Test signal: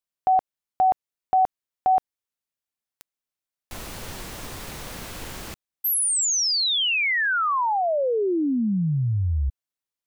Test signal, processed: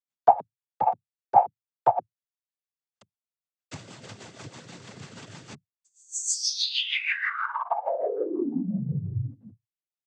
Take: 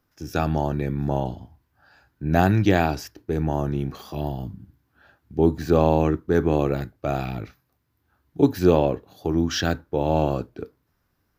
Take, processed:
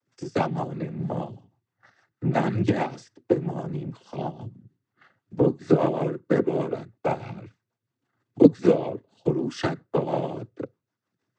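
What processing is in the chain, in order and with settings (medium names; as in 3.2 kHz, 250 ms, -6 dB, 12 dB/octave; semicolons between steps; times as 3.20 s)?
rotary cabinet horn 6.3 Hz; transient shaper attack +12 dB, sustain -4 dB; noise-vocoded speech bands 16; trim -5 dB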